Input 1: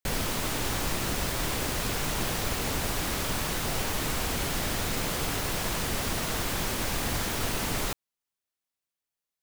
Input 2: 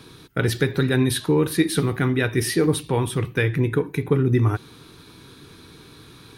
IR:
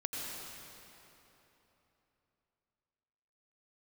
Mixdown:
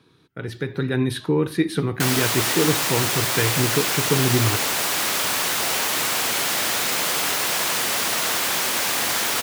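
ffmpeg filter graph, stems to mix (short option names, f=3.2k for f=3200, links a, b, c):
-filter_complex "[0:a]highpass=f=910:p=1,adelay=1950,volume=0dB[a];[1:a]highshelf=f=6k:g=-11,volume=-11.5dB[b];[a][b]amix=inputs=2:normalize=0,highpass=87,dynaudnorm=f=200:g=7:m=10.5dB"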